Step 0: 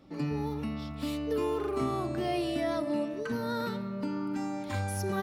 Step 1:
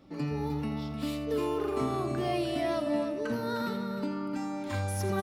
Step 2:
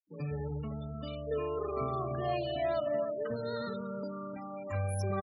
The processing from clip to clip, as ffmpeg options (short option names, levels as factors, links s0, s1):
-af "aecho=1:1:83|305:0.237|0.376"
-af "afftfilt=real='re*gte(hypot(re,im),0.0178)':imag='im*gte(hypot(re,im),0.0178)':win_size=1024:overlap=0.75,aecho=1:1:1.7:0.71,volume=0.631"